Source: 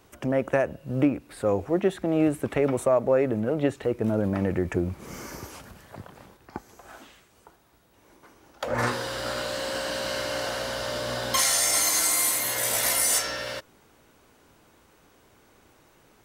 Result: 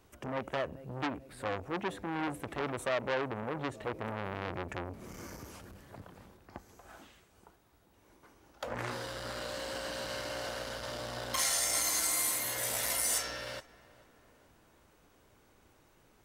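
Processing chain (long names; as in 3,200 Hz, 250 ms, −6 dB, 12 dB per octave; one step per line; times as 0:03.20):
low-shelf EQ 90 Hz +6.5 dB
feedback echo with a low-pass in the loop 437 ms, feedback 58%, level −20.5 dB
saturating transformer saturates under 2,200 Hz
level −7 dB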